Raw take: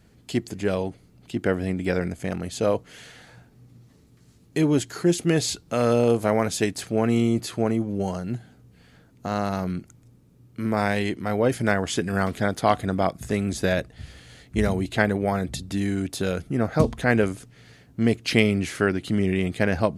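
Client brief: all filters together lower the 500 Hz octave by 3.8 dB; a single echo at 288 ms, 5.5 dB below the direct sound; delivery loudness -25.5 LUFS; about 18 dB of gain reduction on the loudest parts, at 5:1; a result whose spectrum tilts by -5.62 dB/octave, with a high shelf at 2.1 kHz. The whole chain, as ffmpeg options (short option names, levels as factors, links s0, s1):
-af "equalizer=f=500:t=o:g=-4.5,highshelf=f=2100:g=-4.5,acompressor=threshold=0.0158:ratio=5,aecho=1:1:288:0.531,volume=4.73"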